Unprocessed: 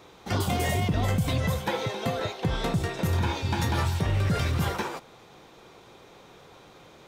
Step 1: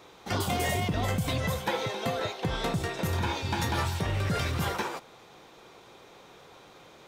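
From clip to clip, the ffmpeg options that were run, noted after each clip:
-af "lowshelf=f=260:g=-5.5"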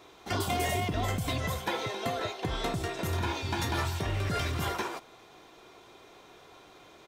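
-af "aecho=1:1:2.9:0.35,volume=-2dB"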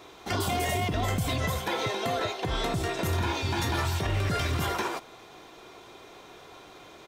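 -af "alimiter=limit=-24dB:level=0:latency=1:release=59,volume=5dB"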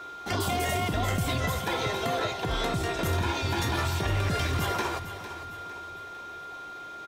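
-af "aecho=1:1:454|908|1362|1816:0.251|0.111|0.0486|0.0214,aeval=exprs='val(0)+0.0112*sin(2*PI*1400*n/s)':c=same"

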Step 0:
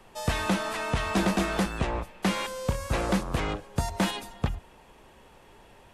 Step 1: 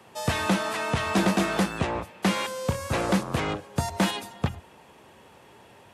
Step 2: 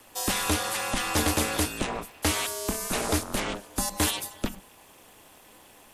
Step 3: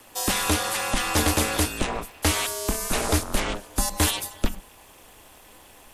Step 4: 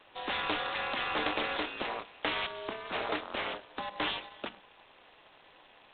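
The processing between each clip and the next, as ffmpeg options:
-af "highpass=f=81:w=0.5412,highpass=f=81:w=1.3066,volume=2.5dB"
-af "aemphasis=mode=production:type=75fm,aeval=exprs='val(0)*sin(2*PI*110*n/s)':c=same"
-af "asubboost=boost=2.5:cutoff=92,volume=3dB"
-af "highpass=420,volume=-6dB" -ar 8000 -c:a adpcm_g726 -b:a 16k

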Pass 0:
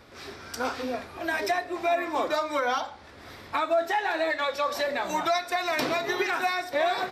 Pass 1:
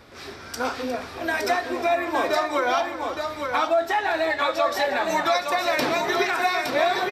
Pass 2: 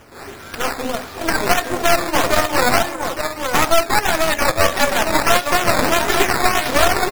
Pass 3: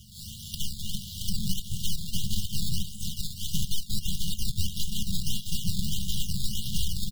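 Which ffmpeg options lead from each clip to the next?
-af "aecho=1:1:358|865:0.211|0.562,volume=3dB"
-af "acrusher=samples=10:mix=1:aa=0.000001:lfo=1:lforange=10:lforate=1.6,aeval=exprs='0.335*(cos(1*acos(clip(val(0)/0.335,-1,1)))-cos(1*PI/2))+0.15*(cos(4*acos(clip(val(0)/0.335,-1,1)))-cos(4*PI/2))':c=same,volume=4dB"
-filter_complex "[0:a]afftfilt=real='re*(1-between(b*sr/4096,220,2800))':imag='im*(1-between(b*sr/4096,220,2800))':win_size=4096:overlap=0.75,acrossover=split=280|2700[a][b][c];[a]acompressor=threshold=-22dB:ratio=4[d];[b]acompressor=threshold=-46dB:ratio=4[e];[c]acompressor=threshold=-36dB:ratio=4[f];[d][e][f]amix=inputs=3:normalize=0,volume=1dB"

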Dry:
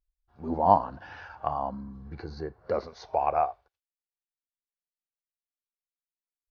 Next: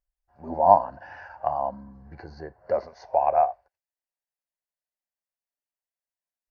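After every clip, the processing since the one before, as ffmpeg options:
-af "superequalizer=8b=3.16:9b=2.24:11b=2:13b=0.355,volume=-4dB"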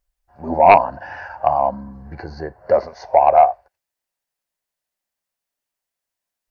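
-af "aeval=exprs='0.891*sin(PI/2*2*val(0)/0.891)':c=same"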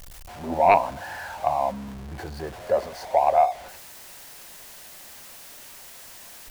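-af "aeval=exprs='val(0)+0.5*0.0398*sgn(val(0))':c=same,volume=-7.5dB"

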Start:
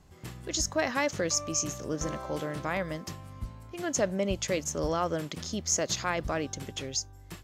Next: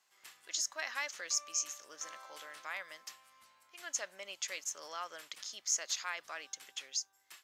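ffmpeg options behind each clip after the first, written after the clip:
-af "highpass=1.4k,volume=-4.5dB"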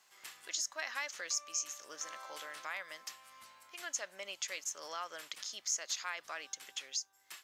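-af "acompressor=threshold=-56dB:ratio=1.5,volume=7dB"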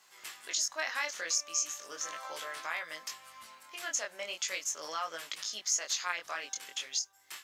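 -af "flanger=delay=18:depth=6.4:speed=0.38,volume=8dB"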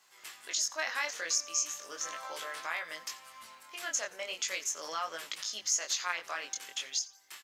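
-filter_complex "[0:a]dynaudnorm=f=100:g=9:m=3dB,bandreject=f=50:t=h:w=6,bandreject=f=100:t=h:w=6,bandreject=f=150:t=h:w=6,bandreject=f=200:t=h:w=6,asplit=4[a][b][c][d];[b]adelay=87,afreqshift=-120,volume=-20dB[e];[c]adelay=174,afreqshift=-240,volume=-29.9dB[f];[d]adelay=261,afreqshift=-360,volume=-39.8dB[g];[a][e][f][g]amix=inputs=4:normalize=0,volume=-2.5dB"

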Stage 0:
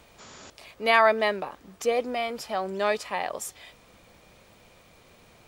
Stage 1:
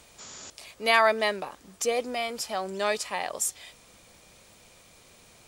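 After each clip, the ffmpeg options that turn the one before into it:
-af "equalizer=f=8.4k:t=o:w=1.9:g=11.5,volume=-2.5dB"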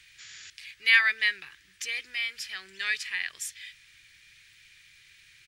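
-af "firequalizer=gain_entry='entry(140,0);entry(230,-22);entry(330,-7);entry(560,-26);entry(1100,-10);entry(1700,15);entry(7500,0)':delay=0.05:min_phase=1,volume=-8.5dB"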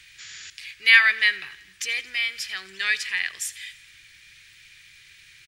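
-af "aecho=1:1:84|168|252|336|420:0.106|0.0625|0.0369|0.0218|0.0128,volume=5.5dB"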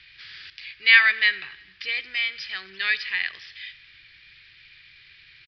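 -af "aresample=11025,aresample=44100"

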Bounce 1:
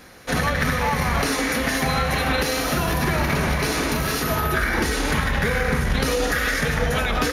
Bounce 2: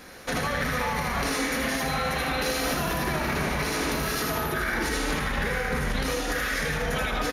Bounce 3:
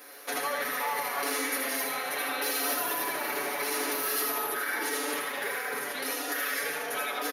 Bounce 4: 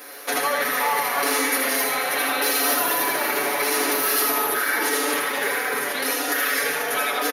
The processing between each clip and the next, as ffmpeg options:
-af "equalizer=f=96:w=1.2:g=-5.5,alimiter=limit=-19dB:level=0:latency=1:release=106,aecho=1:1:80:0.596"
-af "highpass=f=320:w=0.5412,highpass=f=320:w=1.3066,aecho=1:1:7:0.78,aexciter=amount=2.6:drive=8.3:freq=10k,volume=-5.5dB"
-af "aecho=1:1:488:0.251,volume=8.5dB"

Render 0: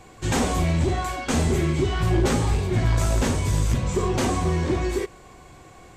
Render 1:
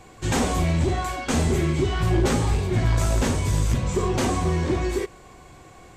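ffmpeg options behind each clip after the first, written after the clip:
-af anull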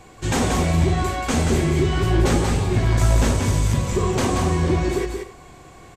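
-af "aecho=1:1:181|253:0.562|0.15,volume=1.5dB"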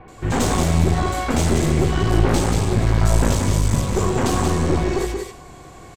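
-filter_complex "[0:a]aeval=exprs='clip(val(0),-1,0.0531)':c=same,acrossover=split=2400[a][b];[b]adelay=80[c];[a][c]amix=inputs=2:normalize=0,volume=3.5dB"

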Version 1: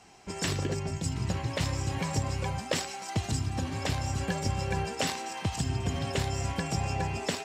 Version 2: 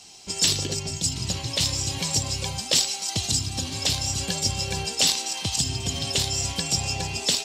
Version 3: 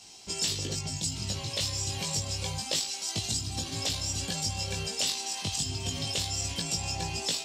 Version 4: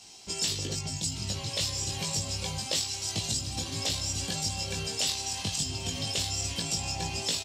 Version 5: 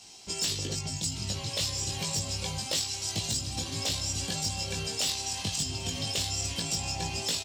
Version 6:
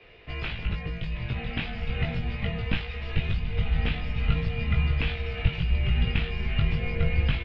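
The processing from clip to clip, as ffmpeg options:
-af "highshelf=f=2.6k:t=q:w=1.5:g=13"
-af "acompressor=threshold=-27dB:ratio=2,flanger=delay=18:depth=2.2:speed=0.28"
-af "aecho=1:1:1169:0.316"
-af "aeval=exprs='0.0891*(abs(mod(val(0)/0.0891+3,4)-2)-1)':c=same"
-af "highpass=f=180:t=q:w=0.5412,highpass=f=180:t=q:w=1.307,lowpass=f=2.9k:t=q:w=0.5176,lowpass=f=2.9k:t=q:w=0.7071,lowpass=f=2.9k:t=q:w=1.932,afreqshift=-320,asubboost=boost=6.5:cutoff=130,volume=7dB"

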